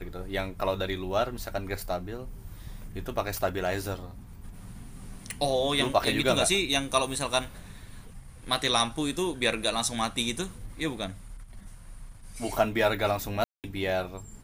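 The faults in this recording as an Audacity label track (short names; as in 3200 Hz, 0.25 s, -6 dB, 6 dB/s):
5.310000	5.310000	pop
13.440000	13.640000	gap 0.198 s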